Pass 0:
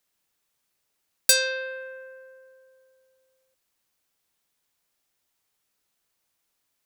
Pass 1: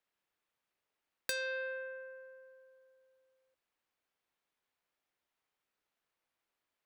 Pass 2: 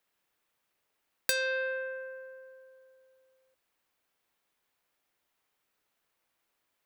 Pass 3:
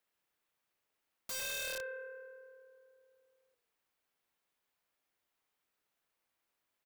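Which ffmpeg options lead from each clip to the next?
ffmpeg -i in.wav -af "bass=frequency=250:gain=-6,treble=frequency=4000:gain=-14,acompressor=threshold=-29dB:ratio=6,volume=-4.5dB" out.wav
ffmpeg -i in.wav -af "highshelf=frequency=11000:gain=6,volume=6.5dB" out.wav
ffmpeg -i in.wav -filter_complex "[0:a]asplit=4[link_01][link_02][link_03][link_04];[link_02]adelay=104,afreqshift=-38,volume=-14dB[link_05];[link_03]adelay=208,afreqshift=-76,volume=-23.1dB[link_06];[link_04]adelay=312,afreqshift=-114,volume=-32.2dB[link_07];[link_01][link_05][link_06][link_07]amix=inputs=4:normalize=0,aeval=exprs='(mod(28.2*val(0)+1,2)-1)/28.2':channel_layout=same,volume=-5.5dB" out.wav

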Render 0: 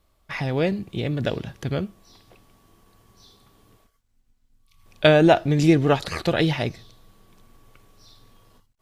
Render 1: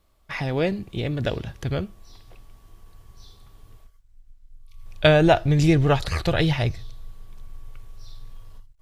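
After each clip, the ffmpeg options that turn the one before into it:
ffmpeg -i in.wav -af "asubboost=boost=8:cutoff=83" out.wav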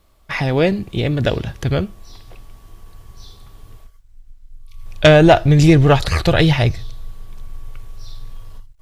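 ffmpeg -i in.wav -af "aeval=exprs='0.891*sin(PI/2*1.58*val(0)/0.891)':channel_layout=same" out.wav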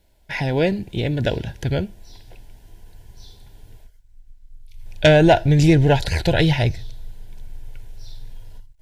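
ffmpeg -i in.wav -af "asuperstop=centerf=1200:order=12:qfactor=3.5,volume=-3.5dB" out.wav

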